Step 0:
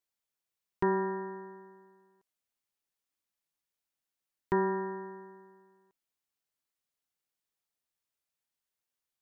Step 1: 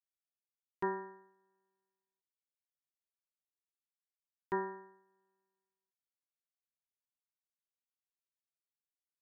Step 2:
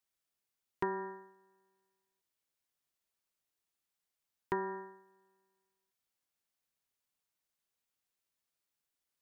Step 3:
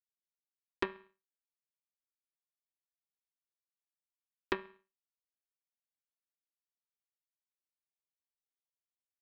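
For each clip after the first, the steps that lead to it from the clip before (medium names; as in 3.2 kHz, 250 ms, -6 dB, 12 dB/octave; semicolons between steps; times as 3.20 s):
bass shelf 250 Hz -11 dB; upward expansion 2.5:1, over -45 dBFS; trim -2.5 dB
compression 6:1, threshold -39 dBFS, peak gain reduction 9 dB; trim +7.5 dB
static phaser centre 330 Hz, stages 4; power-law waveshaper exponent 3; trim +12.5 dB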